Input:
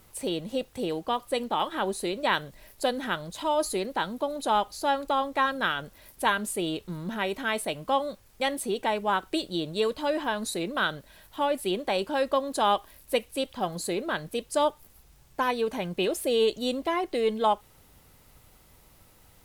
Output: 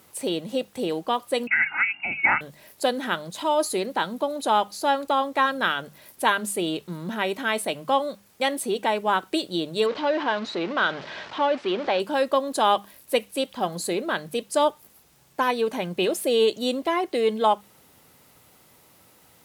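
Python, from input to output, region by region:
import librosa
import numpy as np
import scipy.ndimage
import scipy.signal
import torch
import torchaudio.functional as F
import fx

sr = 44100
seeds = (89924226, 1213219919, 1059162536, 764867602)

y = fx.chain(x, sr, fx.comb(ms=1.5, depth=0.88),
    fx.freq_invert(carrier_hz=2800), at=(1.47, 2.41))
y = fx.chain(y, sr, fx.zero_step(step_db=-31.0),
    fx.bessel_lowpass(hz=3200.0, order=6),
    fx.low_shelf(hz=220.0, db=-9.5), at=(9.86, 12.0))
y = scipy.signal.sosfilt(scipy.signal.butter(2, 140.0, 'highpass', fs=sr, output='sos'), y)
y = fx.hum_notches(y, sr, base_hz=50, count=4)
y = F.gain(torch.from_numpy(y), 3.5).numpy()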